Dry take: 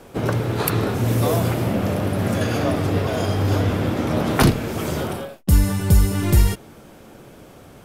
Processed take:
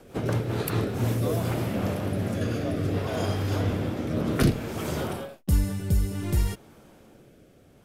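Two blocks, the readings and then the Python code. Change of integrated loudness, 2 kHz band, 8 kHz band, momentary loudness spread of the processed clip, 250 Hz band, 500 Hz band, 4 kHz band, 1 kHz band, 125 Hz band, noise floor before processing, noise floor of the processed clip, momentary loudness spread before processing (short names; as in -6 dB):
-7.0 dB, -8.0 dB, -9.0 dB, 6 LU, -6.5 dB, -6.5 dB, -8.0 dB, -9.0 dB, -6.5 dB, -45 dBFS, -55 dBFS, 7 LU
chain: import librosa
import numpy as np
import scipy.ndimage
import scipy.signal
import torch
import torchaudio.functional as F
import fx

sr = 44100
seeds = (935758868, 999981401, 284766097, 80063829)

y = fx.rider(x, sr, range_db=10, speed_s=2.0)
y = fx.rotary_switch(y, sr, hz=5.0, then_hz=0.6, switch_at_s=0.57)
y = y * librosa.db_to_amplitude(-5.5)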